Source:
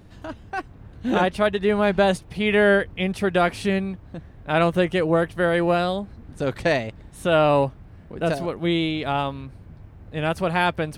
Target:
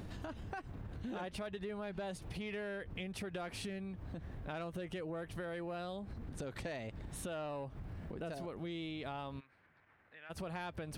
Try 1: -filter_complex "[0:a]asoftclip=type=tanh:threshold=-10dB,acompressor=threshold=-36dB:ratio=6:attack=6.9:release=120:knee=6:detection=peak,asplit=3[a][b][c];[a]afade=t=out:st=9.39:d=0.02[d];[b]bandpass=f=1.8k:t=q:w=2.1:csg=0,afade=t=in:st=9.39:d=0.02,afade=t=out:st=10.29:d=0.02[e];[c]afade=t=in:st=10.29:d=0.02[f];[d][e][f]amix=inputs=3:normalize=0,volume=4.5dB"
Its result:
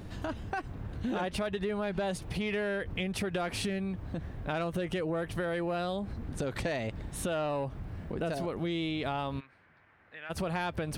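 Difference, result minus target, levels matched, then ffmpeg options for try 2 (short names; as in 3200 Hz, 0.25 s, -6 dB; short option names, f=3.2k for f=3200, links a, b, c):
compressor: peak gain reduction -9.5 dB
-filter_complex "[0:a]asoftclip=type=tanh:threshold=-10dB,acompressor=threshold=-47.5dB:ratio=6:attack=6.9:release=120:knee=6:detection=peak,asplit=3[a][b][c];[a]afade=t=out:st=9.39:d=0.02[d];[b]bandpass=f=1.8k:t=q:w=2.1:csg=0,afade=t=in:st=9.39:d=0.02,afade=t=out:st=10.29:d=0.02[e];[c]afade=t=in:st=10.29:d=0.02[f];[d][e][f]amix=inputs=3:normalize=0,volume=4.5dB"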